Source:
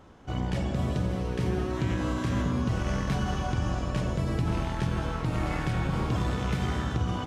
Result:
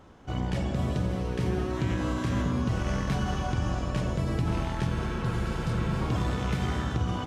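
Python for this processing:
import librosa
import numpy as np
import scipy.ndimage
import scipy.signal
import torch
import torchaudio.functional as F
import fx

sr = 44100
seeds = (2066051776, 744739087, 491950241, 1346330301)

y = fx.spec_repair(x, sr, seeds[0], start_s=4.99, length_s=0.99, low_hz=200.0, high_hz=3500.0, source='before')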